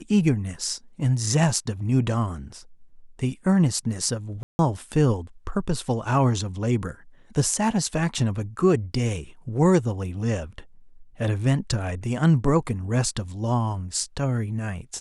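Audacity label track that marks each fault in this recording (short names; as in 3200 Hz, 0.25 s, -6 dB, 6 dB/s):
4.430000	4.590000	gap 0.16 s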